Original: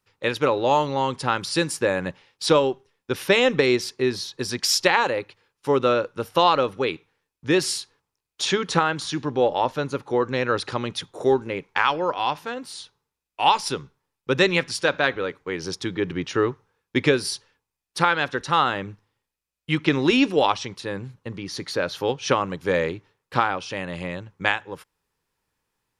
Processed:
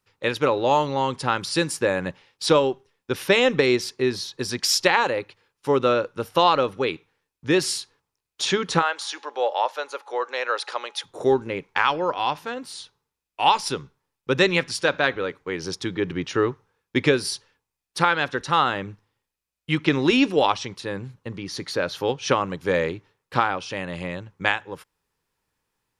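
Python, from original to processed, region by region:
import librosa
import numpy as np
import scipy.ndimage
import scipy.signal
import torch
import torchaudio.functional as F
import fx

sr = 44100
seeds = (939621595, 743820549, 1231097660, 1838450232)

y = fx.highpass(x, sr, hz=530.0, slope=24, at=(8.81, 11.04), fade=0.02)
y = fx.dmg_tone(y, sr, hz=840.0, level_db=-54.0, at=(8.81, 11.04), fade=0.02)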